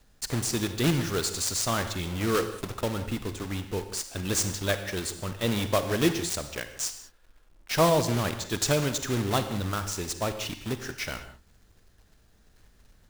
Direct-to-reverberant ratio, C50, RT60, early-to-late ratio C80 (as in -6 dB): 9.0 dB, 10.0 dB, no single decay rate, 11.5 dB